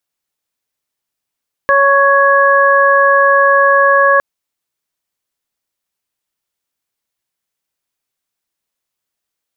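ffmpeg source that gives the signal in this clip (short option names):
-f lavfi -i "aevalsrc='0.266*sin(2*PI*556*t)+0.299*sin(2*PI*1112*t)+0.266*sin(2*PI*1668*t)':d=2.51:s=44100"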